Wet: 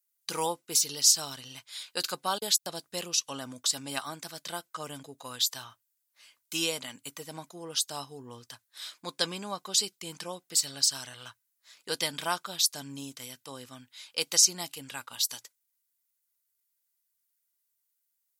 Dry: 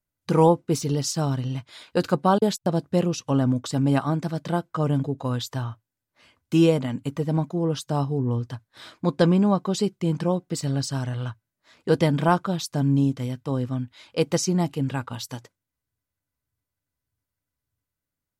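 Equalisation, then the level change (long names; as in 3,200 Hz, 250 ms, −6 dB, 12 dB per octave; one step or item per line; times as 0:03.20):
first difference
dynamic equaliser 4,100 Hz, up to +4 dB, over −51 dBFS, Q 1.3
+8.0 dB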